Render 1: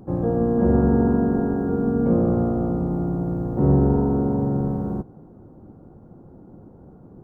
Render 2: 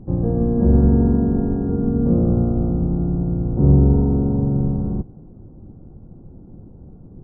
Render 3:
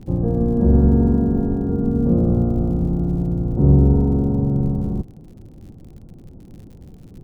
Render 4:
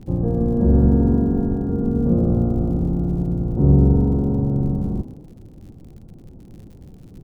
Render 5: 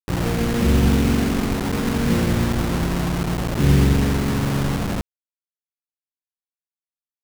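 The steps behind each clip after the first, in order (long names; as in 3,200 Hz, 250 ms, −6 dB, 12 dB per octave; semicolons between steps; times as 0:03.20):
spectral tilt −4 dB per octave; level −6.5 dB
surface crackle 76 per second −40 dBFS
echo with shifted repeats 119 ms, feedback 37%, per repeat +45 Hz, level −15 dB; level −1 dB
bit reduction 4 bits; level −2 dB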